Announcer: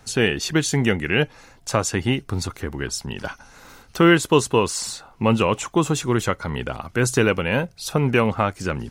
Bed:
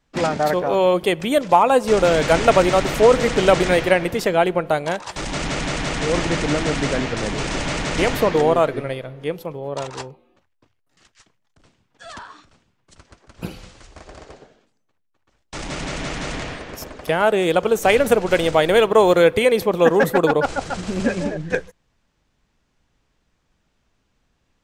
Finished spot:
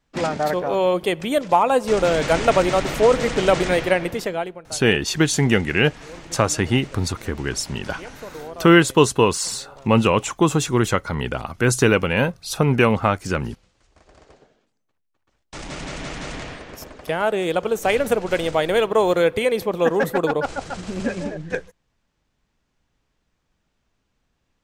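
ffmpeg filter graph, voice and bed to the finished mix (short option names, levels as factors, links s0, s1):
-filter_complex "[0:a]adelay=4650,volume=1.26[s0];[1:a]volume=4.22,afade=t=out:st=4.09:d=0.5:silence=0.149624,afade=t=in:st=13.74:d=1.17:silence=0.177828[s1];[s0][s1]amix=inputs=2:normalize=0"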